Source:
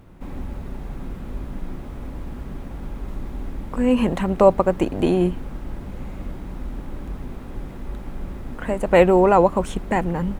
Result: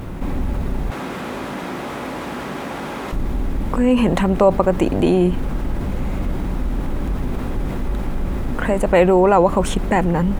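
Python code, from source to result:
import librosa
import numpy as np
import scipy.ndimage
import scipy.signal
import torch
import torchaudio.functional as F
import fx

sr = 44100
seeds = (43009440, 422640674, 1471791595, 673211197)

y = fx.weighting(x, sr, curve='A', at=(0.9, 3.13))
y = fx.env_flatten(y, sr, amount_pct=50)
y = y * librosa.db_to_amplitude(-1.0)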